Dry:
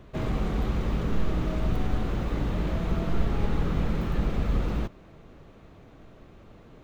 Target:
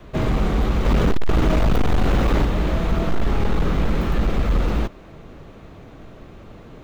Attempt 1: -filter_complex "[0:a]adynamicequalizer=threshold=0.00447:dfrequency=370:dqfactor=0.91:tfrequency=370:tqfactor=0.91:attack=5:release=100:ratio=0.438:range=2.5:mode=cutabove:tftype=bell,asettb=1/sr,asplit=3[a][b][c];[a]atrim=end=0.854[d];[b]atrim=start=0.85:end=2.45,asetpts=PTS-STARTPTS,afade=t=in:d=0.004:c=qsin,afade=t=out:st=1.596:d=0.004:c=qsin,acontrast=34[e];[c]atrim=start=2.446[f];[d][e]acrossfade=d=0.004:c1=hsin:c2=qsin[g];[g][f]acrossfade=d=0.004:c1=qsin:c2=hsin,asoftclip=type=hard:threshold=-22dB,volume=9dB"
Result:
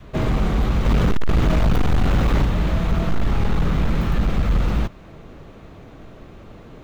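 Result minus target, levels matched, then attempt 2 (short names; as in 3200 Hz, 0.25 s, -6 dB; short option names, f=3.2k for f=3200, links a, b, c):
500 Hz band -3.0 dB
-filter_complex "[0:a]adynamicequalizer=threshold=0.00447:dfrequency=130:dqfactor=0.91:tfrequency=130:tqfactor=0.91:attack=5:release=100:ratio=0.438:range=2.5:mode=cutabove:tftype=bell,asettb=1/sr,asplit=3[a][b][c];[a]atrim=end=0.854[d];[b]atrim=start=0.85:end=2.45,asetpts=PTS-STARTPTS,afade=t=in:d=0.004:c=qsin,afade=t=out:st=1.596:d=0.004:c=qsin,acontrast=34[e];[c]atrim=start=2.446[f];[d][e]acrossfade=d=0.004:c1=hsin:c2=qsin[g];[g][f]acrossfade=d=0.004:c1=qsin:c2=hsin,asoftclip=type=hard:threshold=-22dB,volume=9dB"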